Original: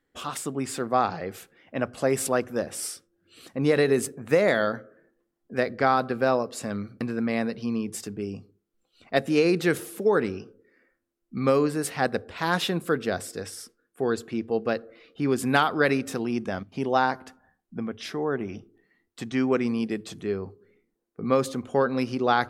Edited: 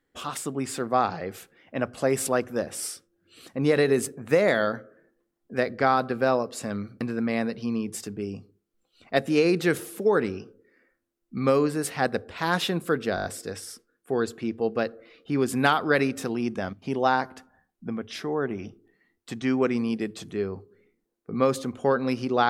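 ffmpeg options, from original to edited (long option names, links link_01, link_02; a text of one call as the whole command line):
ffmpeg -i in.wav -filter_complex "[0:a]asplit=6[link_01][link_02][link_03][link_04][link_05][link_06];[link_01]atrim=end=13.172[link_07];[link_02]atrim=start=13.148:end=13.172[link_08];[link_03]atrim=start=13.148:end=13.172[link_09];[link_04]atrim=start=13.148:end=13.172[link_10];[link_05]atrim=start=13.148:end=13.172[link_11];[link_06]atrim=start=13.148[link_12];[link_07][link_08]acrossfade=duration=0.004:curve1=hsin:curve2=hsin[link_13];[link_13][link_09]acrossfade=duration=0.004:curve1=hsin:curve2=hsin[link_14];[link_14][link_10]acrossfade=duration=0.004:curve1=hsin:curve2=hsin[link_15];[link_15][link_11]acrossfade=duration=0.004:curve1=hsin:curve2=hsin[link_16];[link_16][link_12]acrossfade=duration=0.004:curve1=hsin:curve2=hsin" out.wav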